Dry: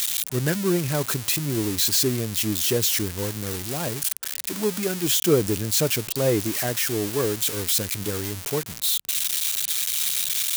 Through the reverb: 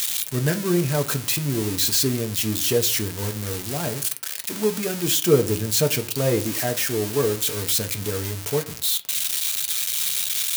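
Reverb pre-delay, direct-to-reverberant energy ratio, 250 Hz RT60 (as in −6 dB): 3 ms, 6.0 dB, 0.45 s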